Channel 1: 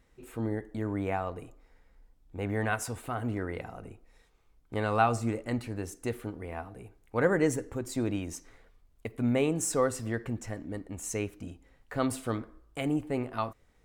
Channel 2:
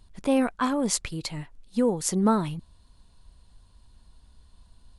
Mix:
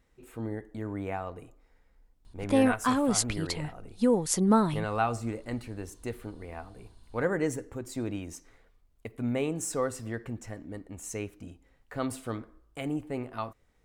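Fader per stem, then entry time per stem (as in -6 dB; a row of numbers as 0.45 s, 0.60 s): -3.0 dB, -0.5 dB; 0.00 s, 2.25 s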